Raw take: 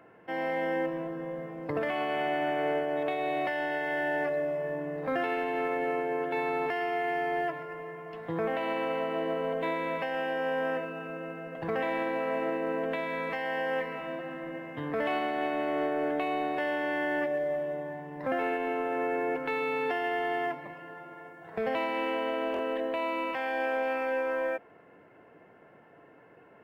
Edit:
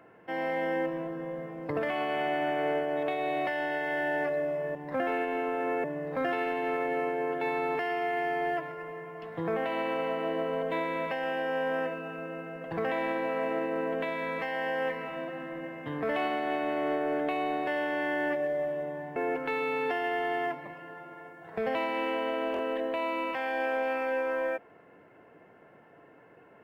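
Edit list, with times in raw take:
18.07–19.16 move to 4.75

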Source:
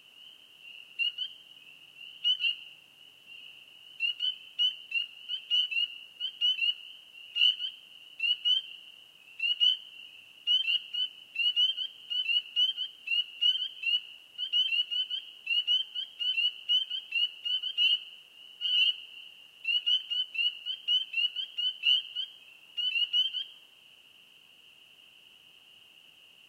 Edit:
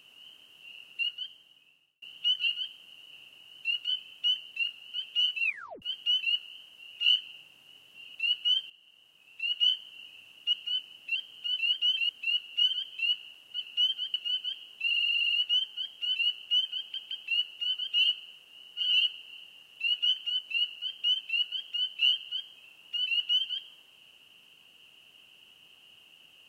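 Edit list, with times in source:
0.9–2.02 fade out
2.55–3.47 swap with 7.58–8.15
5.78 tape stop 0.39 s
8.7–9.78 fade in, from -13 dB
10.53–10.8 cut
11.42–11.81 cut
12.39–12.93 swap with 14.44–14.8
15.51 stutter 0.06 s, 9 plays
16.95 stutter 0.17 s, 3 plays

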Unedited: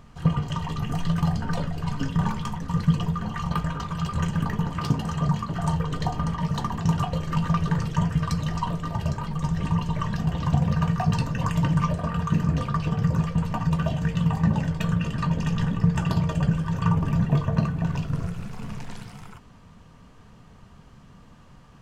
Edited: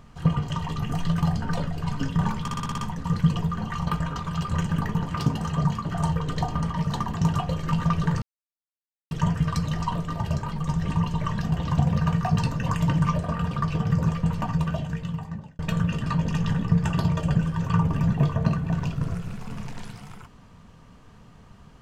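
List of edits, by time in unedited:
2.42 stutter 0.06 s, 7 plays
7.86 insert silence 0.89 s
12.26–12.63 cut
13.55–14.71 fade out

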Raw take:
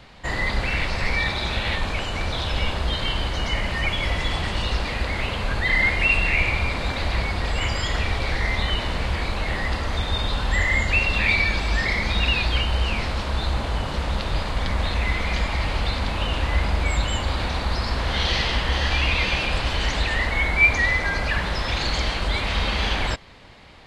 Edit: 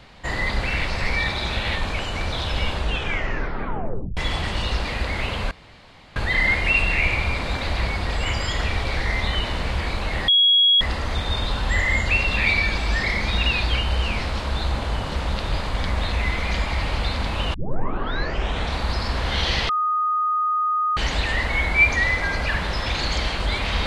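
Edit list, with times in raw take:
2.74 tape stop 1.43 s
5.51 insert room tone 0.65 s
9.63 add tone 3320 Hz -12.5 dBFS 0.53 s
16.36 tape start 1.21 s
18.51–19.79 bleep 1240 Hz -18.5 dBFS

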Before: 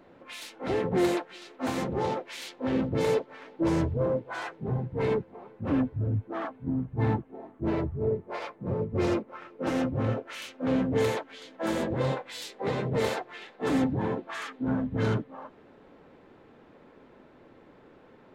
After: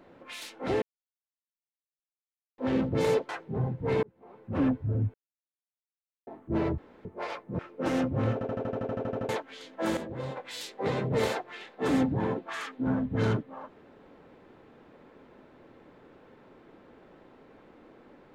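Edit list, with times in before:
0.82–2.58 mute
3.29–4.41 cut
5.15–5.66 fade in
6.26–7.39 mute
7.9–8.17 room tone
8.71–9.4 cut
10.14 stutter in place 0.08 s, 12 plays
11.78–12.18 gain -8.5 dB

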